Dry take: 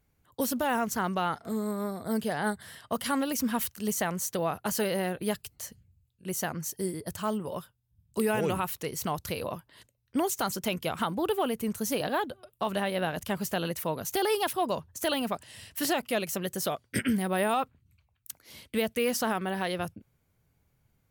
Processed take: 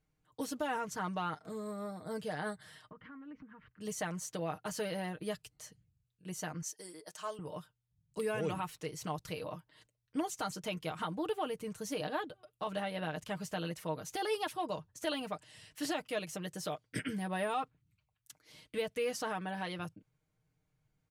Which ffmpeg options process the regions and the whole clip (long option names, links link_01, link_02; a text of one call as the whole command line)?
ffmpeg -i in.wav -filter_complex "[0:a]asettb=1/sr,asplit=3[link_01][link_02][link_03];[link_01]atrim=end=2.894[link_04];[link_02]atrim=start=2.89:end=3.81,asetpts=PTS-STARTPTS,afade=type=in:duration=0.004:curve=qsin,afade=type=out:start_time=0.916:duration=0.004:curve=qsin,lowpass=frequency=1800:width=0.5412,lowpass=frequency=1800:width=1.3066,equalizer=frequency=680:width_type=o:width=0.93:gain=-14,acompressor=threshold=-39dB:ratio=16:attack=3.2:release=140:knee=1:detection=peak[link_05];[link_03]atrim=start=3.806[link_06];[link_04][link_05]acrossfade=duration=0.004:curve1=hsin:curve2=qsin[link_07];[link_07][link_06]acrossfade=duration=0.004:curve1=qsin:curve2=hsin,asettb=1/sr,asplit=3[link_08][link_09][link_10];[link_08]atrim=end=6.624[link_11];[link_09]atrim=start=6.62:end=7.39,asetpts=PTS-STARTPTS,afade=type=in:duration=0.004:curve=qsin,afade=type=out:start_time=0.766:duration=0.004:curve=qsin,highpass=510,equalizer=frequency=6100:width_type=o:width=0.65:gain=5.5[link_12];[link_10]atrim=start=7.386[link_13];[link_11][link_12]acrossfade=duration=0.004:curve1=hsin:curve2=qsin[link_14];[link_14][link_13]acrossfade=duration=0.004:curve1=qsin:curve2=hsin,lowpass=8500,aecho=1:1:6.5:0.65,volume=-9dB" out.wav